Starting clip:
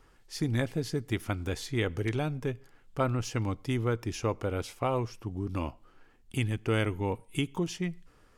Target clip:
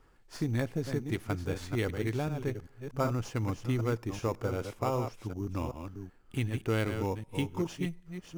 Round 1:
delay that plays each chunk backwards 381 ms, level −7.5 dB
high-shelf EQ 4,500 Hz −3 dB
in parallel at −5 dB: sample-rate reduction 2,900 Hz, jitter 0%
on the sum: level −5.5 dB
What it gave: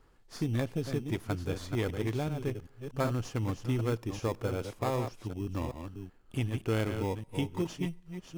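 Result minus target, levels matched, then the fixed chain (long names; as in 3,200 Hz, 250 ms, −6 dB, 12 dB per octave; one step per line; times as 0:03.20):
sample-rate reduction: distortion +4 dB
delay that plays each chunk backwards 381 ms, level −7.5 dB
high-shelf EQ 4,500 Hz −3 dB
in parallel at −5 dB: sample-rate reduction 6,100 Hz, jitter 0%
on the sum: level −5.5 dB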